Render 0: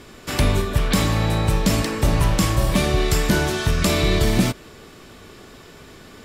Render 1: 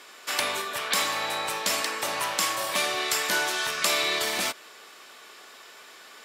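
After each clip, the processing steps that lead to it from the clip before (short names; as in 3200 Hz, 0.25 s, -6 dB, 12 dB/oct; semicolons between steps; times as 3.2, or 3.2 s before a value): HPF 810 Hz 12 dB/oct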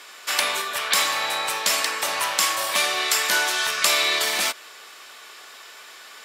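low shelf 480 Hz -10 dB; gain +5.5 dB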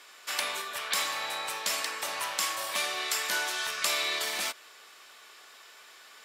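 crackle 95/s -50 dBFS; gain -9 dB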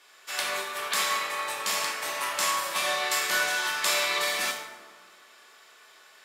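plate-style reverb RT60 1.9 s, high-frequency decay 0.45×, DRR -4 dB; upward expander 1.5:1, over -37 dBFS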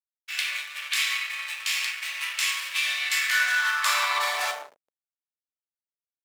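backlash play -31 dBFS; high-pass sweep 2400 Hz -> 210 Hz, 3.03–6.04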